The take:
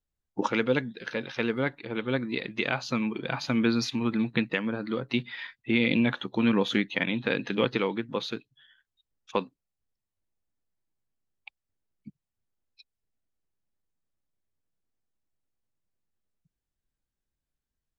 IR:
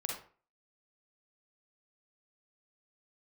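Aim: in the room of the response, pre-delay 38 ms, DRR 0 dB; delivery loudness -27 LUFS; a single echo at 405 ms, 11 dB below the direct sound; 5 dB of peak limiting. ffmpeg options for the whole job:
-filter_complex "[0:a]alimiter=limit=0.168:level=0:latency=1,aecho=1:1:405:0.282,asplit=2[s0][s1];[1:a]atrim=start_sample=2205,adelay=38[s2];[s1][s2]afir=irnorm=-1:irlink=0,volume=0.794[s3];[s0][s3]amix=inputs=2:normalize=0"

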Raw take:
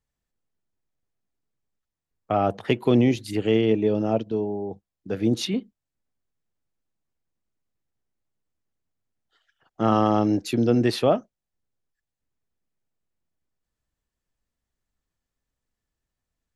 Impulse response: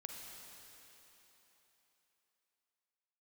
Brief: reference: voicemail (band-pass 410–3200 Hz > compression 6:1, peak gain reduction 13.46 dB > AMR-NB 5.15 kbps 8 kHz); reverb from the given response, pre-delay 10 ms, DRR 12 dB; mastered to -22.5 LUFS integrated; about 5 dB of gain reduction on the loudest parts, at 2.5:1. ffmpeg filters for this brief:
-filter_complex "[0:a]acompressor=threshold=0.0794:ratio=2.5,asplit=2[s0][s1];[1:a]atrim=start_sample=2205,adelay=10[s2];[s1][s2]afir=irnorm=-1:irlink=0,volume=0.355[s3];[s0][s3]amix=inputs=2:normalize=0,highpass=410,lowpass=3200,acompressor=threshold=0.0178:ratio=6,volume=8.91" -ar 8000 -c:a libopencore_amrnb -b:a 5150

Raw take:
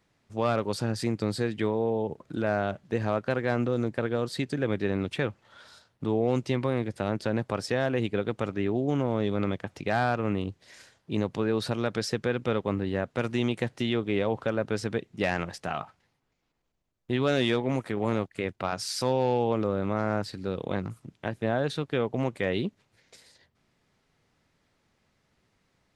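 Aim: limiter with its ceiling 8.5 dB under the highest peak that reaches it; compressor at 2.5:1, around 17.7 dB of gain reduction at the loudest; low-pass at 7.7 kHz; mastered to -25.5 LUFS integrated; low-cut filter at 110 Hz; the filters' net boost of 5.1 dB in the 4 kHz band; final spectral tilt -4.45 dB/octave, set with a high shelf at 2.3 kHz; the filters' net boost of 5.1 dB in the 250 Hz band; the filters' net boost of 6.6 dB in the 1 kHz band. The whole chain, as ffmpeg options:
-af "highpass=110,lowpass=7700,equalizer=f=250:t=o:g=6,equalizer=f=1000:t=o:g=8,highshelf=f=2300:g=3,equalizer=f=4000:t=o:g=3.5,acompressor=threshold=0.00501:ratio=2.5,volume=8.41,alimiter=limit=0.224:level=0:latency=1"

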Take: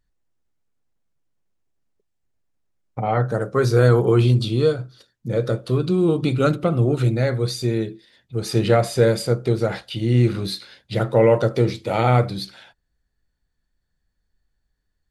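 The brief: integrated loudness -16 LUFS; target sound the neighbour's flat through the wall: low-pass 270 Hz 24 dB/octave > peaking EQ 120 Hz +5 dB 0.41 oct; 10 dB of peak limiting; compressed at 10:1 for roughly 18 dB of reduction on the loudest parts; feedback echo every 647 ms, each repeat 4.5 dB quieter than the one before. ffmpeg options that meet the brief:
-af "acompressor=threshold=0.0316:ratio=10,alimiter=level_in=1.41:limit=0.0631:level=0:latency=1,volume=0.708,lowpass=f=270:w=0.5412,lowpass=f=270:w=1.3066,equalizer=f=120:t=o:w=0.41:g=5,aecho=1:1:647|1294|1941|2588|3235|3882|4529|5176|5823:0.596|0.357|0.214|0.129|0.0772|0.0463|0.0278|0.0167|0.01,volume=9.44"

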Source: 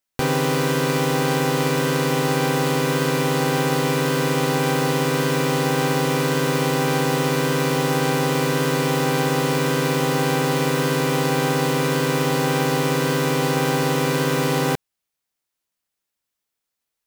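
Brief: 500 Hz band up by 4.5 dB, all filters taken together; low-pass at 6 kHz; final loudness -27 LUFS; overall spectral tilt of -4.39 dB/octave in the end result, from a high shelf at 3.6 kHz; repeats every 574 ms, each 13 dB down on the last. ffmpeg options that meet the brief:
-af "lowpass=6000,equalizer=f=500:t=o:g=5,highshelf=f=3600:g=9,aecho=1:1:574|1148|1722:0.224|0.0493|0.0108,volume=0.335"

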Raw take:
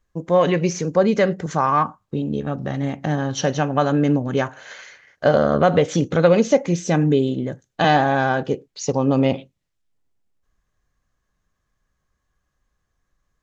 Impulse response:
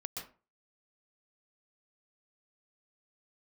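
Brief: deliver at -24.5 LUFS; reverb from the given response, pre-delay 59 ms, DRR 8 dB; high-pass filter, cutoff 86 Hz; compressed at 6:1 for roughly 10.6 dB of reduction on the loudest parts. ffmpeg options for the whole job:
-filter_complex "[0:a]highpass=86,acompressor=threshold=0.0794:ratio=6,asplit=2[s0][s1];[1:a]atrim=start_sample=2205,adelay=59[s2];[s1][s2]afir=irnorm=-1:irlink=0,volume=0.422[s3];[s0][s3]amix=inputs=2:normalize=0,volume=1.33"

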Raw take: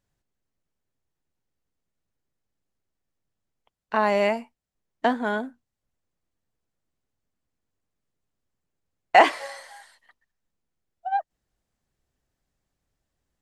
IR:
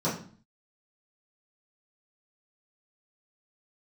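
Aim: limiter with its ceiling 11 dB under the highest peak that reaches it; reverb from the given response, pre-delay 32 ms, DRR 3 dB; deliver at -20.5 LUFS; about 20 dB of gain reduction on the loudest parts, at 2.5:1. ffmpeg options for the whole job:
-filter_complex "[0:a]acompressor=threshold=0.00891:ratio=2.5,alimiter=level_in=2:limit=0.0631:level=0:latency=1,volume=0.501,asplit=2[s0][s1];[1:a]atrim=start_sample=2205,adelay=32[s2];[s1][s2]afir=irnorm=-1:irlink=0,volume=0.211[s3];[s0][s3]amix=inputs=2:normalize=0,volume=11.2"

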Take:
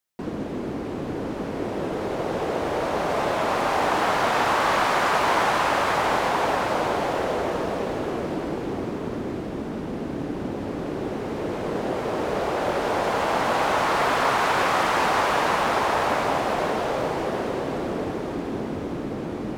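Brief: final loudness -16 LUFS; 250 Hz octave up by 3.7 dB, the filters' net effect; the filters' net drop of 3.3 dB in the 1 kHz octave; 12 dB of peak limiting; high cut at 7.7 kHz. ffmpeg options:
-af "lowpass=7700,equalizer=f=250:t=o:g=5,equalizer=f=1000:t=o:g=-4.5,volume=5.62,alimiter=limit=0.398:level=0:latency=1"

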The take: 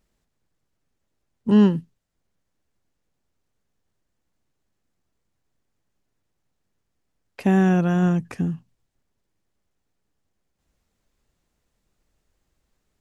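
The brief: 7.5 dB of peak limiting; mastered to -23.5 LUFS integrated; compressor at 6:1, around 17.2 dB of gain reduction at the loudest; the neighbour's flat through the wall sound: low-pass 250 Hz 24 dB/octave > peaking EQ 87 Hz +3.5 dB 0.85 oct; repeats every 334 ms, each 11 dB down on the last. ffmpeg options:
-af "acompressor=threshold=0.0316:ratio=6,alimiter=level_in=1.5:limit=0.0631:level=0:latency=1,volume=0.668,lowpass=f=250:w=0.5412,lowpass=f=250:w=1.3066,equalizer=f=87:t=o:w=0.85:g=3.5,aecho=1:1:334|668|1002:0.282|0.0789|0.0221,volume=5.01"

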